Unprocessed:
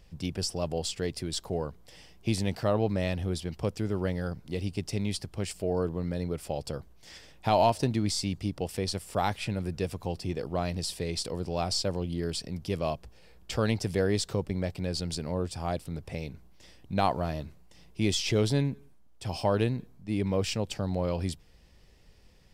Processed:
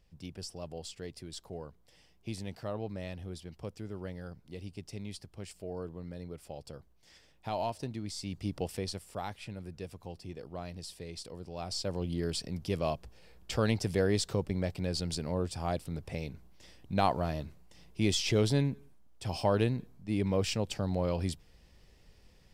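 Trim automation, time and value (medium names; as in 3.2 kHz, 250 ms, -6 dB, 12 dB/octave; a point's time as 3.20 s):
8.12 s -11 dB
8.57 s -1.5 dB
9.25 s -11 dB
11.53 s -11 dB
12.07 s -1.5 dB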